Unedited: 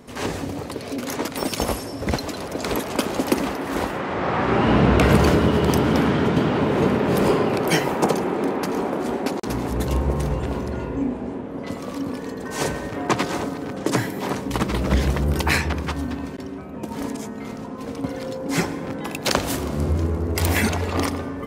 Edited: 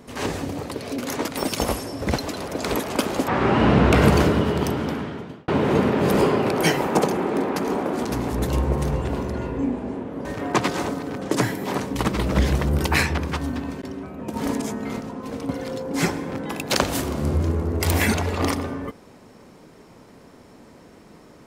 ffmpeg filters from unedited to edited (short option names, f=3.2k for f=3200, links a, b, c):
-filter_complex "[0:a]asplit=7[a][b][c][d][e][f][g];[a]atrim=end=3.282[h];[b]atrim=start=4.348:end=6.55,asetpts=PTS-STARTPTS,afade=t=out:st=0.802:d=1.4[i];[c]atrim=start=6.55:end=9.122,asetpts=PTS-STARTPTS,afade=t=in:d=0.004:c=hsin[j];[d]atrim=start=9.428:end=11.632[k];[e]atrim=start=12.798:end=16.892[l];[f]atrim=start=16.888:end=17.552,asetpts=PTS-STARTPTS,volume=3.5dB[m];[g]atrim=start=17.548[n];[i][j]concat=n=2:v=0:a=1[o];[h][o]acrossfade=d=0.004:c1=hsin:c2=hsin[p];[p][k]acrossfade=d=0.004:c1=hsin:c2=hsin[q];[q][l]acrossfade=d=0.004:c1=hsin:c2=hsin[r];[r][m]acrossfade=d=0.004:c1=hsin:c2=hsin[s];[s][n]acrossfade=d=0.004:c1=hsin:c2=hsin"